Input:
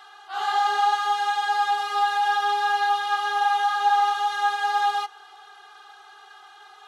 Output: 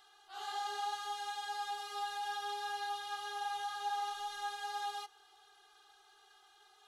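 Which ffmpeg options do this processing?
ffmpeg -i in.wav -af "equalizer=frequency=1200:width=0.38:gain=-13.5,volume=-5.5dB" out.wav

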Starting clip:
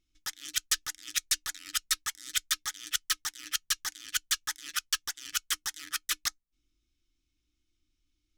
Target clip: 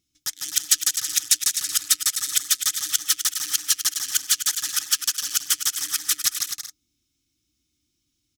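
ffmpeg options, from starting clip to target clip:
ffmpeg -i in.wav -filter_complex "[0:a]highpass=140,bass=frequency=250:gain=12,treble=frequency=4000:gain=11,asplit=2[link_01][link_02];[link_02]aecho=0:1:150|255|328.5|380|416:0.631|0.398|0.251|0.158|0.1[link_03];[link_01][link_03]amix=inputs=2:normalize=0" out.wav

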